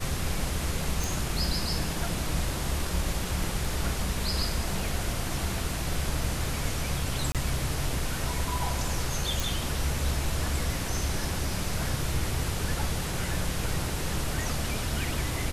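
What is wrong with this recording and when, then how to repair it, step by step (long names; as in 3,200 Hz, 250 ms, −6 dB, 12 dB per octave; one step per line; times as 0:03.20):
0:01.04: click
0:07.32–0:07.35: drop-out 27 ms
0:09.40: click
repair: click removal
repair the gap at 0:07.32, 27 ms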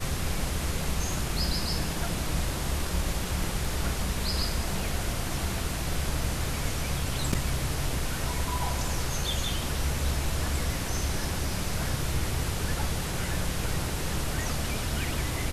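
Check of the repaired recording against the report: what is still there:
none of them is left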